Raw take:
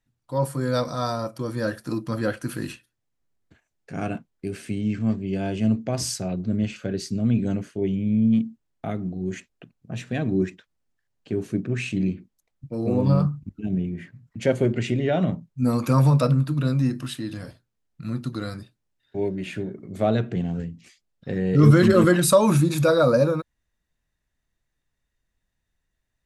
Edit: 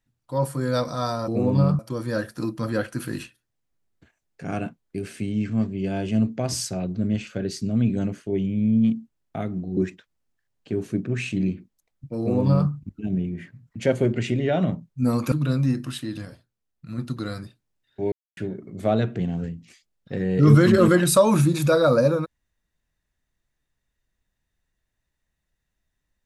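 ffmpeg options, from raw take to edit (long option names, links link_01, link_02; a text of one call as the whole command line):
ffmpeg -i in.wav -filter_complex "[0:a]asplit=9[link_01][link_02][link_03][link_04][link_05][link_06][link_07][link_08][link_09];[link_01]atrim=end=1.282[link_10];[link_02]atrim=start=12.788:end=13.302[link_11];[link_03]atrim=start=1.278:end=9.262[link_12];[link_04]atrim=start=10.368:end=15.922[link_13];[link_05]atrim=start=16.478:end=17.412[link_14];[link_06]atrim=start=17.408:end=18.142,asetpts=PTS-STARTPTS,volume=-4dB[link_15];[link_07]atrim=start=18.138:end=19.28,asetpts=PTS-STARTPTS,afade=type=out:start_time=1.138:duration=0.004:curve=hsin[link_16];[link_08]atrim=start=19.28:end=19.53,asetpts=PTS-STARTPTS,volume=0[link_17];[link_09]atrim=start=19.53,asetpts=PTS-STARTPTS,afade=type=in:duration=0.004:curve=hsin[link_18];[link_10][link_11]acrossfade=duration=0.004:curve1=hsin:curve2=hsin[link_19];[link_19][link_12]acrossfade=duration=0.004:curve1=hsin:curve2=hsin[link_20];[link_20][link_13]acrossfade=duration=0.004:curve1=hsin:curve2=hsin[link_21];[link_21][link_14]acrossfade=duration=0.004:curve1=hsin:curve2=hsin[link_22];[link_22][link_15]acrossfade=duration=0.004:curve1=hsin:curve2=hsin[link_23];[link_16][link_17][link_18]concat=n=3:v=0:a=1[link_24];[link_23][link_24]acrossfade=duration=0.004:curve1=hsin:curve2=hsin" out.wav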